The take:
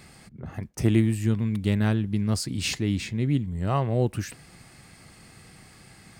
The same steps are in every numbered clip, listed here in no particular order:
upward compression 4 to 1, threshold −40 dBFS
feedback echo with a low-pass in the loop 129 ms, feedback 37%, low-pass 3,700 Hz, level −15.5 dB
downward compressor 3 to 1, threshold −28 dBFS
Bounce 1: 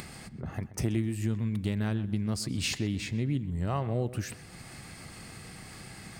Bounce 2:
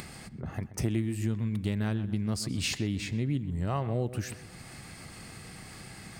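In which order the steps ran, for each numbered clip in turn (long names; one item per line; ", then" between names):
upward compression, then downward compressor, then feedback echo with a low-pass in the loop
feedback echo with a low-pass in the loop, then upward compression, then downward compressor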